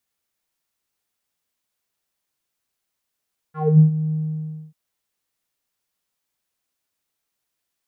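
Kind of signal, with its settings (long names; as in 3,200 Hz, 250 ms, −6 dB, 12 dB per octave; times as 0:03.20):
subtractive voice square D#3 12 dB per octave, low-pass 200 Hz, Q 5.5, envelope 3 octaves, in 0.23 s, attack 253 ms, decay 0.11 s, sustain −13.5 dB, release 0.61 s, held 0.58 s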